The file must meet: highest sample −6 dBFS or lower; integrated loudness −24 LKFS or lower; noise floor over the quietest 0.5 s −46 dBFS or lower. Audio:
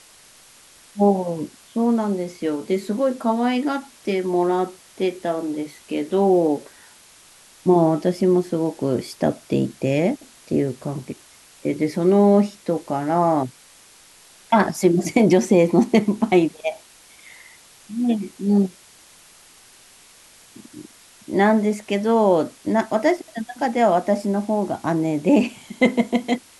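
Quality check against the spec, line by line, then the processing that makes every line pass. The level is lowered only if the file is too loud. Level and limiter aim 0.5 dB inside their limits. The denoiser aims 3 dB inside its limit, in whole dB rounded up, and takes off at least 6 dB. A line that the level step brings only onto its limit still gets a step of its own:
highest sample −4.5 dBFS: out of spec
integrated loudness −21.0 LKFS: out of spec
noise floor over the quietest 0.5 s −50 dBFS: in spec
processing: level −3.5 dB

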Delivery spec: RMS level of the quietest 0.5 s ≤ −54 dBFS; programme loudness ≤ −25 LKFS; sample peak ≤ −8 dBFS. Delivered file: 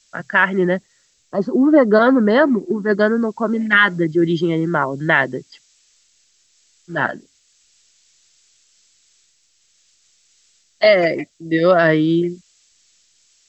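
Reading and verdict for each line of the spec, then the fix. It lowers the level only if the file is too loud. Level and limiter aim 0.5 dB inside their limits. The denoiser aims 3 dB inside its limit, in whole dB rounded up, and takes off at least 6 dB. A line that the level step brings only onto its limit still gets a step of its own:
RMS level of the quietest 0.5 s −60 dBFS: in spec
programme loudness −16.5 LKFS: out of spec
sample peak −2.0 dBFS: out of spec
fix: level −9 dB

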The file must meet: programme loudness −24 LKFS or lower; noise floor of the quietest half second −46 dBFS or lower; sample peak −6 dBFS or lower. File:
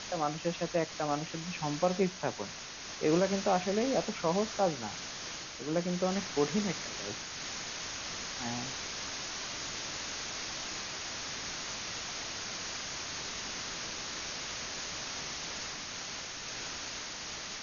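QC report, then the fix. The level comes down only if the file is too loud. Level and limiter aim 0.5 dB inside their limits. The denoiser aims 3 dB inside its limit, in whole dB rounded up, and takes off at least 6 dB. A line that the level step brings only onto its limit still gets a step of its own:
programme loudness −35.0 LKFS: in spec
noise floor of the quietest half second −44 dBFS: out of spec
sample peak −15.0 dBFS: in spec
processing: broadband denoise 6 dB, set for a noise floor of −44 dBFS

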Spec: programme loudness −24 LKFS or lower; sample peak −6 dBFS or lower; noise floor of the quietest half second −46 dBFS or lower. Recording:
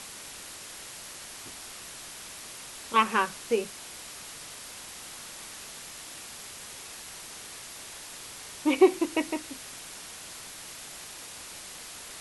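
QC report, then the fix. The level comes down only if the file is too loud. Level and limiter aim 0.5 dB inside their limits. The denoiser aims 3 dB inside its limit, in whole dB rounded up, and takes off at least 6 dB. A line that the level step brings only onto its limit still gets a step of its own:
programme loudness −33.0 LKFS: in spec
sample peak −7.0 dBFS: in spec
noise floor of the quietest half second −44 dBFS: out of spec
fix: broadband denoise 6 dB, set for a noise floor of −44 dBFS

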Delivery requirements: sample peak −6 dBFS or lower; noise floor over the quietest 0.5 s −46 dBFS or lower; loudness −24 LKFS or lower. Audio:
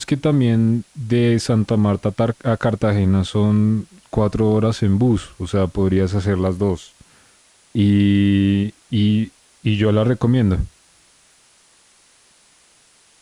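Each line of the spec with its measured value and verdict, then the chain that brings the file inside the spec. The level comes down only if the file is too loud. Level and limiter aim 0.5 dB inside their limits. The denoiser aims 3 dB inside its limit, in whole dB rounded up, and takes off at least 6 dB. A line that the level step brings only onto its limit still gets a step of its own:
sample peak −4.0 dBFS: out of spec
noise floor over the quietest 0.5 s −54 dBFS: in spec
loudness −18.5 LKFS: out of spec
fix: level −6 dB

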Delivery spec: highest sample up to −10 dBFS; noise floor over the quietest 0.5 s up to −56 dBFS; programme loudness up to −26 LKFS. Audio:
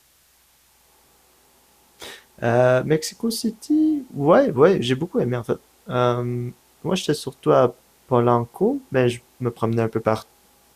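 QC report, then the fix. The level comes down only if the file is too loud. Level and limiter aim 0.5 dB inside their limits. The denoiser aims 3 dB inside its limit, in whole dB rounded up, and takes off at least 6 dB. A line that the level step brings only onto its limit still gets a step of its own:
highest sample −4.0 dBFS: out of spec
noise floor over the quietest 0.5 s −58 dBFS: in spec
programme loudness −21.0 LKFS: out of spec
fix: level −5.5 dB
brickwall limiter −10.5 dBFS

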